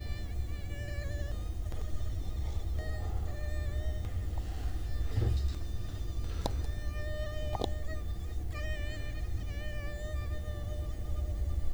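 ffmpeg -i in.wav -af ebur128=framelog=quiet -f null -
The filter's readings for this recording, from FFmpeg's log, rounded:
Integrated loudness:
  I:         -38.0 LUFS
  Threshold: -48.0 LUFS
Loudness range:
  LRA:         2.4 LU
  Threshold: -57.8 LUFS
  LRA low:   -38.9 LUFS
  LRA high:  -36.6 LUFS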